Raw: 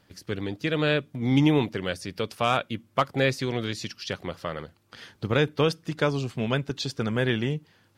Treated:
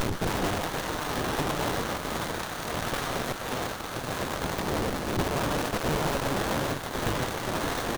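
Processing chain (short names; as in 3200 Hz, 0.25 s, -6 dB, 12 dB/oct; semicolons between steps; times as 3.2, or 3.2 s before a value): spectral swells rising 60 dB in 0.31 s; limiter -17.5 dBFS, peak gain reduction 9 dB; spectral gain 3.95–6.62, 410–3900 Hz -21 dB; echo 0.492 s -7 dB; on a send at -4 dB: reverb, pre-delay 79 ms; on the sum: auto swell 0.518 s; power-law curve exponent 0.35; wrapped overs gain 29.5 dB; Butterworth band-stop 1400 Hz, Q 4.9; running maximum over 17 samples; gain +8 dB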